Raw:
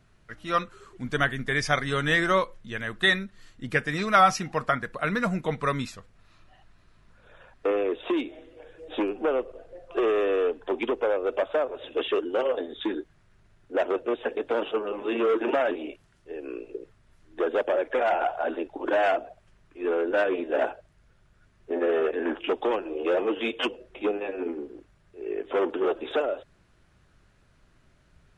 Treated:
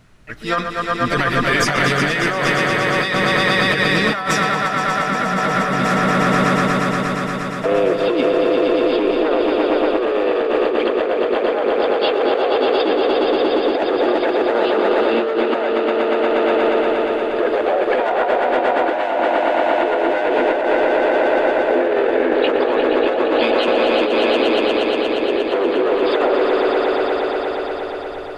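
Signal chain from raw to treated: harmony voices +5 st -7 dB; echo with a slow build-up 118 ms, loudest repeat 5, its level -6.5 dB; compressor with a negative ratio -24 dBFS, ratio -1; trim +7.5 dB

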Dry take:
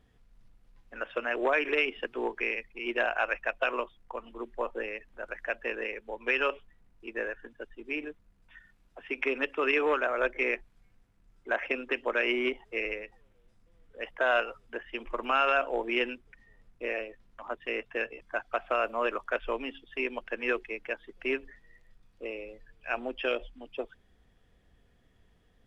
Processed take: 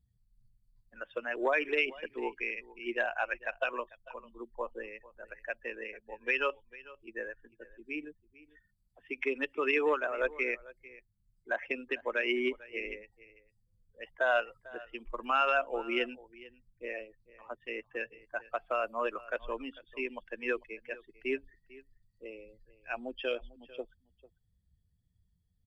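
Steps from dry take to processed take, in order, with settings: expander on every frequency bin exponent 1.5; delay 447 ms -20 dB

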